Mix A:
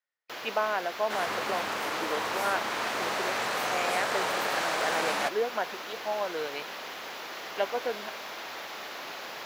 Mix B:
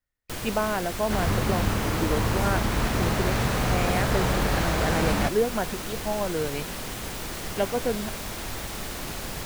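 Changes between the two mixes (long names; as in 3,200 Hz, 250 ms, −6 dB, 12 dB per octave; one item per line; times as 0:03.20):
first sound: remove moving average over 5 samples
master: remove high-pass filter 570 Hz 12 dB per octave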